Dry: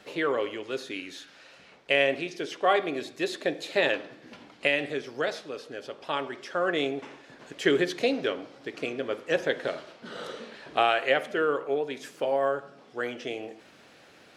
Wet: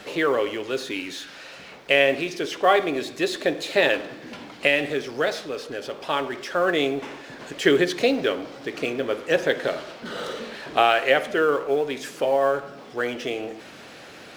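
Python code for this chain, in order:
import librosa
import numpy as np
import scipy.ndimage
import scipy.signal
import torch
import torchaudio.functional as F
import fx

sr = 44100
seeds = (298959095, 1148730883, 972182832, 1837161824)

y = fx.law_mismatch(x, sr, coded='mu')
y = y * 10.0 ** (4.5 / 20.0)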